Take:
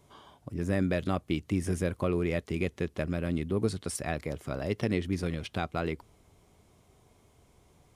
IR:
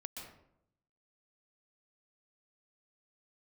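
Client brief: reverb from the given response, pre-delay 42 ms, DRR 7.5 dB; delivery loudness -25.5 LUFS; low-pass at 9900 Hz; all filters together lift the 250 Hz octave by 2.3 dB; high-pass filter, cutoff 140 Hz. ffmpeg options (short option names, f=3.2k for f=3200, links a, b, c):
-filter_complex "[0:a]highpass=140,lowpass=9.9k,equalizer=f=250:t=o:g=4,asplit=2[a][b];[1:a]atrim=start_sample=2205,adelay=42[c];[b][c]afir=irnorm=-1:irlink=0,volume=-5dB[d];[a][d]amix=inputs=2:normalize=0,volume=5dB"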